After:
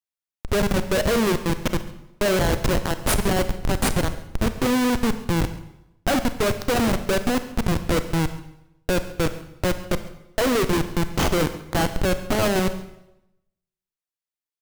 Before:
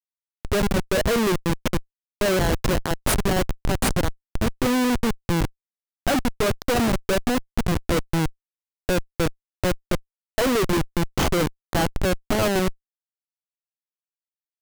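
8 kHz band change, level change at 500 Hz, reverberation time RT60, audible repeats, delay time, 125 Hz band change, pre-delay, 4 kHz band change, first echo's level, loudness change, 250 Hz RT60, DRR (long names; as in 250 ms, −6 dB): +0.5 dB, +0.5 dB, 0.90 s, 1, 137 ms, +0.5 dB, 29 ms, +0.5 dB, −20.5 dB, +0.5 dB, 0.90 s, 10.0 dB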